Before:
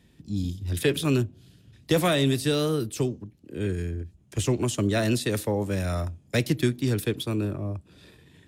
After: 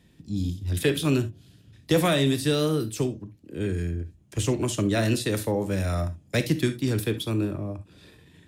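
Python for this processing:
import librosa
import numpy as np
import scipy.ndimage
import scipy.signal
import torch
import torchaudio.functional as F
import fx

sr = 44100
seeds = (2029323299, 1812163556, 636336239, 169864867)

y = fx.rev_gated(x, sr, seeds[0], gate_ms=90, shape='flat', drr_db=10.0)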